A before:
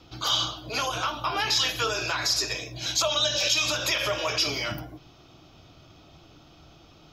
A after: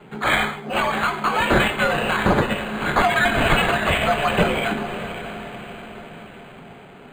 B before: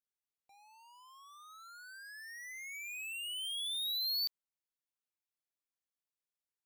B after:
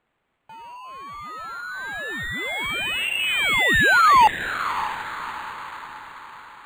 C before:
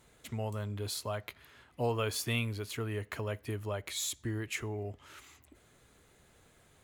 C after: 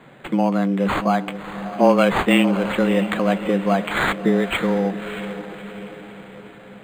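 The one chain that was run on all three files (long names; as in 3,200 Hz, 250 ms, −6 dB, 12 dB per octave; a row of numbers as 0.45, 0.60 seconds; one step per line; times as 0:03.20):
frequency shifter +93 Hz
feedback delay with all-pass diffusion 609 ms, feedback 51%, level −11.5 dB
linearly interpolated sample-rate reduction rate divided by 8×
loudness normalisation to −20 LKFS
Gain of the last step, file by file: +8.5, +22.5, +17.5 decibels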